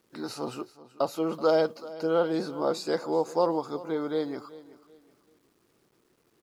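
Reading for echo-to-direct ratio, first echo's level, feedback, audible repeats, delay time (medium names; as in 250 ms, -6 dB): -17.5 dB, -18.0 dB, 32%, 2, 379 ms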